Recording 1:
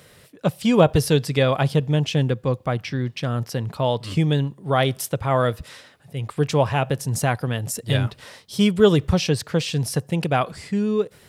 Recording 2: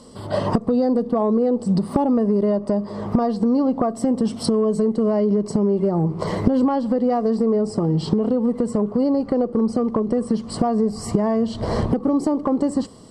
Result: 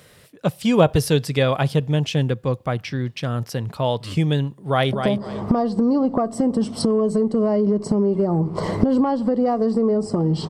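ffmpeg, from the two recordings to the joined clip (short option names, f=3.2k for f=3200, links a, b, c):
-filter_complex "[0:a]apad=whole_dur=10.49,atrim=end=10.49,atrim=end=4.932[a];[1:a]atrim=start=2.568:end=8.13[b];[a][b]acrossfade=d=0.004:c1=hsin:c2=hsin,asplit=2[c][d];[d]afade=t=in:st=4.56:d=0.01,afade=t=out:st=4.93:d=0.01,aecho=0:1:250|500|750:0.473151|0.0946303|0.0189261[e];[c][e]amix=inputs=2:normalize=0"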